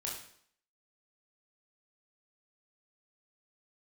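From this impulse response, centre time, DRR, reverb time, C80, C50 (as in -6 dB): 41 ms, -3.5 dB, 0.60 s, 7.5 dB, 4.0 dB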